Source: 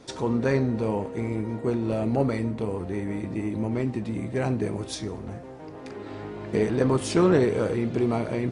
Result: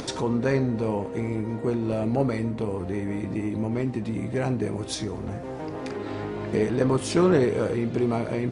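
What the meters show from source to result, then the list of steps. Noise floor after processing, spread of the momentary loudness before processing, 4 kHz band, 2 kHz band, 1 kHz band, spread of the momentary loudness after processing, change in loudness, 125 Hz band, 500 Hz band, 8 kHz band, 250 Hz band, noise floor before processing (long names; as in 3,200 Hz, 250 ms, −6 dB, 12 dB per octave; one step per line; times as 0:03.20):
−35 dBFS, 15 LU, +2.0 dB, +0.5 dB, +0.5 dB, 10 LU, −0.5 dB, +0.5 dB, 0.0 dB, +1.5 dB, +0.5 dB, −40 dBFS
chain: upward compression, threshold −24 dBFS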